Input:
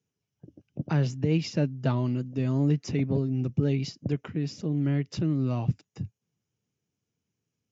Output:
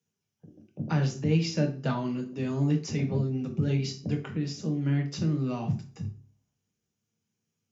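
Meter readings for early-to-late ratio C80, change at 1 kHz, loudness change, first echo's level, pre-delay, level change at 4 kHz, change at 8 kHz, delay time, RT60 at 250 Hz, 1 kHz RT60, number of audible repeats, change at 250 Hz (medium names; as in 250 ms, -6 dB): 15.0 dB, +1.5 dB, -1.5 dB, no echo, 3 ms, +2.0 dB, no reading, no echo, 0.50 s, 0.40 s, no echo, -1.0 dB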